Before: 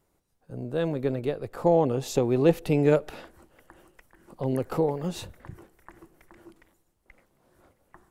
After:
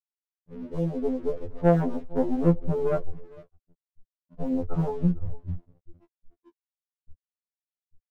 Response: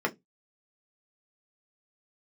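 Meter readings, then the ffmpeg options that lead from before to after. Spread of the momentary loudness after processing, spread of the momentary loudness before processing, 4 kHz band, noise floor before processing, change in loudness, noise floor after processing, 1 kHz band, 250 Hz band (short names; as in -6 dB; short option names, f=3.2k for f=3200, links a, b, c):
16 LU, 17 LU, under -15 dB, -72 dBFS, -1.5 dB, under -85 dBFS, -3.0 dB, +1.0 dB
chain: -filter_complex "[0:a]tiltshelf=f=1.4k:g=8.5,afftfilt=real='re*gte(hypot(re,im),0.0631)':imag='im*gte(hypot(re,im),0.0631)':win_size=1024:overlap=0.75,flanger=delay=2.7:depth=1.9:regen=81:speed=0.32:shape=triangular,aecho=1:1:457|914:0.0708|0.0106,acrossover=split=130[a][b];[a]alimiter=level_in=9.5dB:limit=-24dB:level=0:latency=1:release=29,volume=-9.5dB[c];[c][b]amix=inputs=2:normalize=0,asubboost=boost=6.5:cutoff=130,aeval=exprs='(tanh(5.62*val(0)+0.35)-tanh(0.35))/5.62':c=same,aeval=exprs='sgn(val(0))*max(abs(val(0))-0.00422,0)':c=same,afftfilt=real='re*2*eq(mod(b,4),0)':imag='im*2*eq(mod(b,4),0)':win_size=2048:overlap=0.75,volume=2dB"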